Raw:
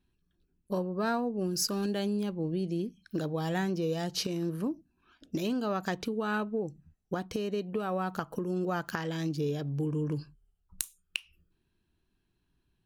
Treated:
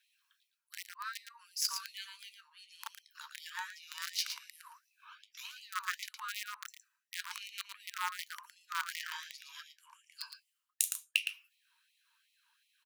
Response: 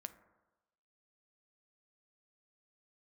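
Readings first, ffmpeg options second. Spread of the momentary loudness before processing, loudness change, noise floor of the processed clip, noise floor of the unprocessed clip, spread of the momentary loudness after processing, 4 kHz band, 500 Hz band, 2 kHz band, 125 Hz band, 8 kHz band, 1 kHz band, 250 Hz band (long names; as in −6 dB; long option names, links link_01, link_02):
8 LU, −6.5 dB, −83 dBFS, −77 dBFS, 20 LU, +0.5 dB, below −40 dB, −0.5 dB, below −40 dB, +1.0 dB, −7.0 dB, below −40 dB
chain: -filter_complex "[0:a]equalizer=frequency=910:width=2.5:gain=4,areverse,acompressor=threshold=-44dB:ratio=10,areverse,aeval=exprs='0.0316*(cos(1*acos(clip(val(0)/0.0316,-1,1)))-cos(1*PI/2))+0.0002*(cos(6*acos(clip(val(0)/0.0316,-1,1)))-cos(6*PI/2))+0.001*(cos(7*acos(clip(val(0)/0.0316,-1,1)))-cos(7*PI/2))':channel_layout=same,flanger=delay=7.6:depth=5.8:regen=-58:speed=0.16:shape=triangular,asplit=2[link_01][link_02];[link_02]acrusher=bits=6:mix=0:aa=0.000001,volume=-5dB[link_03];[link_01][link_03]amix=inputs=2:normalize=0,afreqshift=-39,aecho=1:1:113:0.422,afftfilt=real='re*gte(b*sr/1024,860*pow(1900/860,0.5+0.5*sin(2*PI*2.7*pts/sr)))':imag='im*gte(b*sr/1024,860*pow(1900/860,0.5+0.5*sin(2*PI*2.7*pts/sr)))':win_size=1024:overlap=0.75,volume=17.5dB"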